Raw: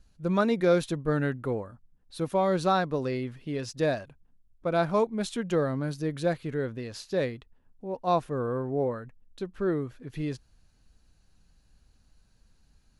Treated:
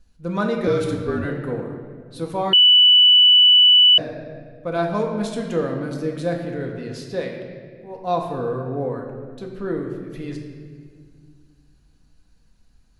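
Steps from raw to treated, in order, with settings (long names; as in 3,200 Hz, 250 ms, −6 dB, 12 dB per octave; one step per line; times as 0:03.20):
0:07.20–0:07.96: low-shelf EQ 460 Hz −7.5 dB
convolution reverb RT60 1.9 s, pre-delay 4 ms, DRR 0.5 dB
0:00.67–0:01.25: frequency shifter −49 Hz
0:02.53–0:03.98: beep over 2,970 Hz −8.5 dBFS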